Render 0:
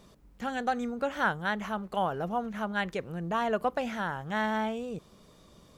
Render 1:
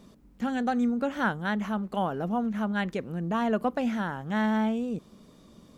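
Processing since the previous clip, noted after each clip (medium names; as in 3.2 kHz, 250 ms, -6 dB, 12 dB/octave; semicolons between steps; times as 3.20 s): peaking EQ 240 Hz +10 dB 0.95 oct; trim -1 dB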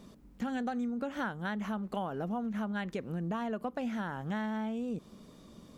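compression, threshold -32 dBFS, peak gain reduction 11 dB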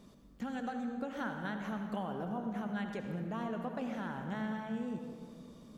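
reverberation RT60 2.0 s, pre-delay 64 ms, DRR 4 dB; trim -4.5 dB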